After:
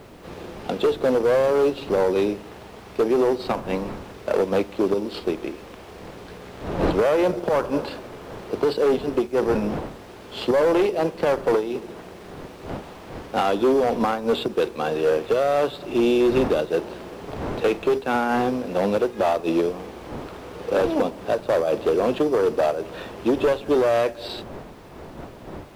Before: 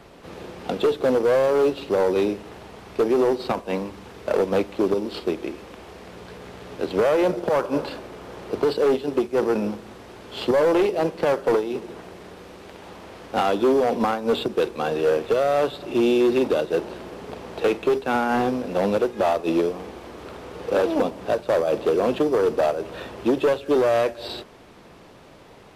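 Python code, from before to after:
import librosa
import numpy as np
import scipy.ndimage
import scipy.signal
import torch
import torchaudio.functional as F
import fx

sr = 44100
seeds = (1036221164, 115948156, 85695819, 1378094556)

y = fx.dmg_wind(x, sr, seeds[0], corner_hz=530.0, level_db=-38.0)
y = fx.quant_dither(y, sr, seeds[1], bits=10, dither='none')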